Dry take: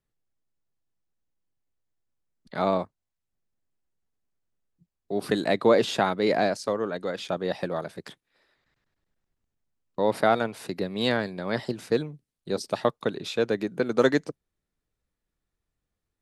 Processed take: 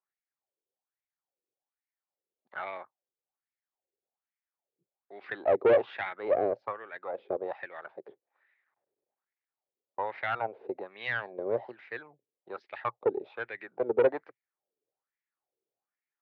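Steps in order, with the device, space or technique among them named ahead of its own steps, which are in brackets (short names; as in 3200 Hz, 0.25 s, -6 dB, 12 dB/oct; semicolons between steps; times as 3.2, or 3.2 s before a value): wah-wah guitar rig (wah 1.2 Hz 420–2100 Hz, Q 4.5; tube stage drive 25 dB, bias 0.4; speaker cabinet 110–3600 Hz, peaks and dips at 120 Hz +6 dB, 170 Hz -6 dB, 370 Hz +6 dB, 550 Hz +4 dB, 800 Hz +7 dB, 2300 Hz +3 dB); gain +3.5 dB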